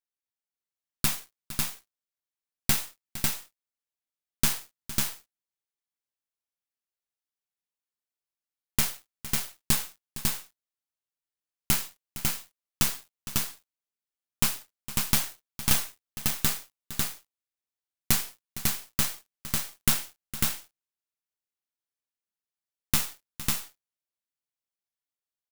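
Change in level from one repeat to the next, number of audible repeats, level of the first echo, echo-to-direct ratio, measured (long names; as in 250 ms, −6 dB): repeats not evenly spaced, 2, −15.0 dB, −2.5 dB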